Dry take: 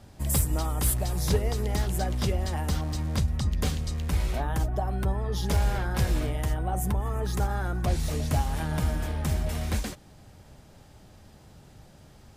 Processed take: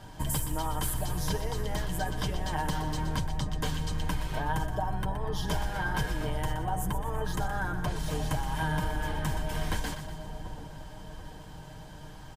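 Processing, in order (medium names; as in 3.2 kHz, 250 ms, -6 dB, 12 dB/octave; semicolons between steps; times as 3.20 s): octave divider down 2 oct, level -4 dB; comb 6.5 ms, depth 53%; compression 4:1, threshold -31 dBFS, peak gain reduction 12 dB; small resonant body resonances 970/1600/3100 Hz, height 13 dB, ringing for 30 ms; on a send: two-band feedback delay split 920 Hz, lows 737 ms, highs 122 ms, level -10 dB; on the sum: trim +2 dB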